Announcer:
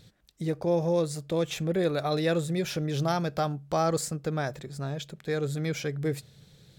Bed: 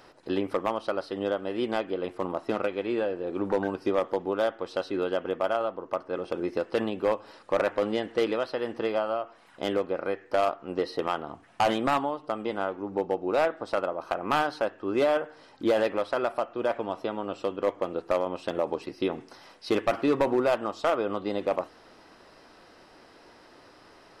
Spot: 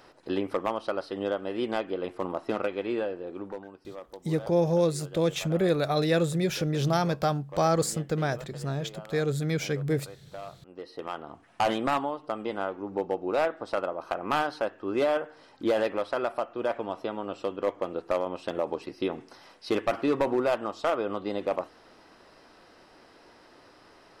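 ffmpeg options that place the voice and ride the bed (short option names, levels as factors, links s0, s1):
-filter_complex "[0:a]adelay=3850,volume=1.26[s0];[1:a]volume=5.01,afade=t=out:st=2.92:d=0.72:silence=0.16788,afade=t=in:st=10.72:d=0.87:silence=0.177828[s1];[s0][s1]amix=inputs=2:normalize=0"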